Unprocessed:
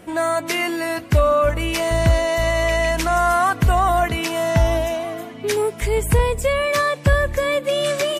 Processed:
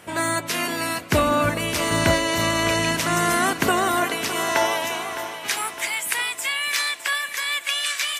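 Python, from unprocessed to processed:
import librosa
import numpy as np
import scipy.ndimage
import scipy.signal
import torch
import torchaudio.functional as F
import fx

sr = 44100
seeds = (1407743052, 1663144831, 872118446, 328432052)

y = fx.spec_clip(x, sr, under_db=17)
y = fx.filter_sweep_highpass(y, sr, from_hz=100.0, to_hz=1800.0, start_s=2.78, end_s=6.04, q=0.97)
y = fx.echo_feedback(y, sr, ms=610, feedback_pct=54, wet_db=-12)
y = y * 10.0 ** (-3.0 / 20.0)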